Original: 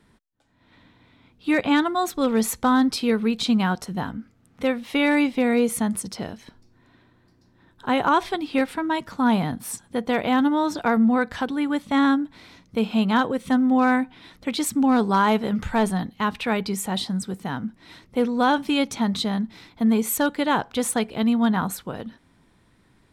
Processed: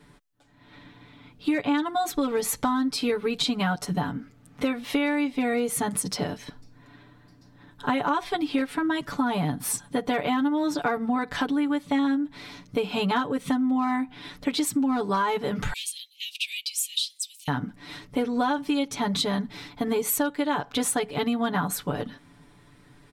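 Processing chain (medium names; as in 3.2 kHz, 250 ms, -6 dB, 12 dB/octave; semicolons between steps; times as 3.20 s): 15.73–17.48 s: steep high-pass 2.5 kHz 72 dB/octave; comb 6.9 ms, depth 98%; compression 6:1, threshold -25 dBFS, peak gain reduction 14.5 dB; trim +2.5 dB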